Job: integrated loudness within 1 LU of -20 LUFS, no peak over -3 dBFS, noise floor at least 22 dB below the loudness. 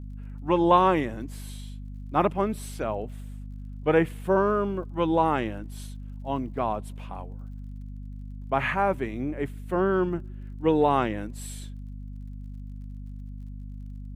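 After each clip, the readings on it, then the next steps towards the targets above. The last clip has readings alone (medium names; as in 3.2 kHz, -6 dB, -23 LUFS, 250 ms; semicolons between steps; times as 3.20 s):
tick rate 45 per s; hum 50 Hz; highest harmonic 250 Hz; hum level -36 dBFS; loudness -26.0 LUFS; peak level -6.0 dBFS; loudness target -20.0 LUFS
-> de-click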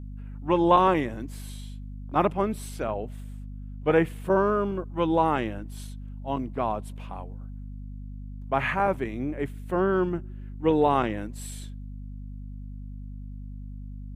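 tick rate 0.071 per s; hum 50 Hz; highest harmonic 250 Hz; hum level -36 dBFS
-> de-hum 50 Hz, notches 5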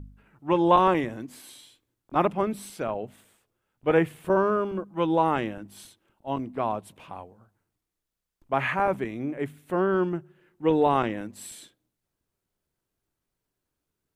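hum not found; loudness -26.0 LUFS; peak level -6.0 dBFS; loudness target -20.0 LUFS
-> trim +6 dB; peak limiter -3 dBFS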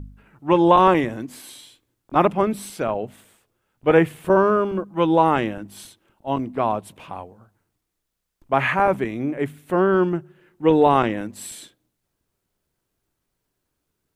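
loudness -20.5 LUFS; peak level -3.0 dBFS; noise floor -78 dBFS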